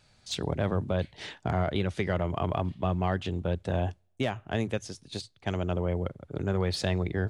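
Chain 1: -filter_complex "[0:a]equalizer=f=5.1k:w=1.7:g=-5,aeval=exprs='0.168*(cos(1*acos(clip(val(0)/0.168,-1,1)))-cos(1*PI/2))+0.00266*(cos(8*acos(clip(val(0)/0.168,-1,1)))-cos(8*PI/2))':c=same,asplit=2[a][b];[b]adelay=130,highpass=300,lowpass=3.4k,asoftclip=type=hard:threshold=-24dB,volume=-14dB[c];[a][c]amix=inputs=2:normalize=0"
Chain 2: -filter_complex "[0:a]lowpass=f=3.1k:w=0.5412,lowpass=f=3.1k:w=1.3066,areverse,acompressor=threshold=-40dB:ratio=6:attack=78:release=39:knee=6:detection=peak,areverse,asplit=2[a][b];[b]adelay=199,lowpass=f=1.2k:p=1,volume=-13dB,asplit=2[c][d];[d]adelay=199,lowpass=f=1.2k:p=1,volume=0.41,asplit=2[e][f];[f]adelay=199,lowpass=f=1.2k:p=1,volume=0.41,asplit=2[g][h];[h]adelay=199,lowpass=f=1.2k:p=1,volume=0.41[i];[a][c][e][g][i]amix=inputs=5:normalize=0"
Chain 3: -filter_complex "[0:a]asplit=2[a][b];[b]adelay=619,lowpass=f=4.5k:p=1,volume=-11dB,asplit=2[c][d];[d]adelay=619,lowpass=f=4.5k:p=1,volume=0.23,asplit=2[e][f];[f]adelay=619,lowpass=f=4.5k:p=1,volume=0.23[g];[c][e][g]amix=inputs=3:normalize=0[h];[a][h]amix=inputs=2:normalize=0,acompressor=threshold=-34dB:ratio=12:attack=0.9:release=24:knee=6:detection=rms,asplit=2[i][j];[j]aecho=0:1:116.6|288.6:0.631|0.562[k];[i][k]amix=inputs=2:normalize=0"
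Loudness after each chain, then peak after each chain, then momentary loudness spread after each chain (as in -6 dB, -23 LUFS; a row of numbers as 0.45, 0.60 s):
-31.0, -37.0, -38.5 LUFS; -15.5, -19.5, -25.0 dBFS; 8, 6, 2 LU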